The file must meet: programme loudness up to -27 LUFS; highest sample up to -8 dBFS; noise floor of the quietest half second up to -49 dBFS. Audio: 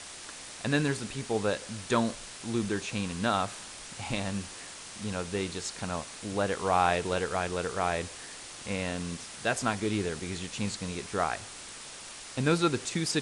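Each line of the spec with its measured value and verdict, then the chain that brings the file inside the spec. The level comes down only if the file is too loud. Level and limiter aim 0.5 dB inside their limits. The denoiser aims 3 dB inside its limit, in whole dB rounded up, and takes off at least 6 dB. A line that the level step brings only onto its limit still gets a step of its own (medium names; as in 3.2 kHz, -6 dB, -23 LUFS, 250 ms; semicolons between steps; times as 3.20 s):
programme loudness -32.0 LUFS: pass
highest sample -10.5 dBFS: pass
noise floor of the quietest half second -45 dBFS: fail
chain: noise reduction 7 dB, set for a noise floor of -45 dBFS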